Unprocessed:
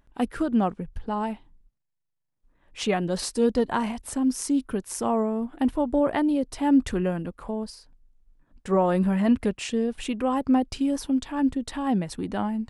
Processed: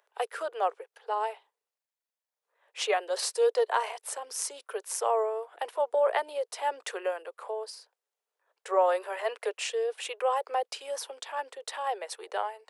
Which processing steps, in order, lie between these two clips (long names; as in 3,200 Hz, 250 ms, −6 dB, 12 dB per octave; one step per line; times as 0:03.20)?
Butterworth high-pass 420 Hz 72 dB per octave